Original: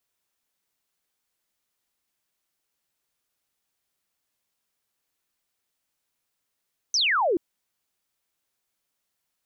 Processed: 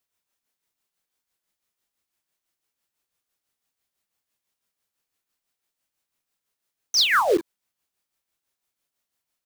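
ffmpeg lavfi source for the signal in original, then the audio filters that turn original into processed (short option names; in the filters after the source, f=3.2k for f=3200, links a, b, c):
-f lavfi -i "aevalsrc='0.106*clip(t/0.002,0,1)*clip((0.43-t)/0.002,0,1)*sin(2*PI*6300*0.43/log(310/6300)*(exp(log(310/6300)*t/0.43)-1))':d=0.43:s=44100"
-filter_complex "[0:a]aecho=1:1:30|42:0.335|0.335,asplit=2[a][b];[b]acrusher=bits=4:mix=0:aa=0.000001,volume=-3dB[c];[a][c]amix=inputs=2:normalize=0,tremolo=f=6:d=0.56"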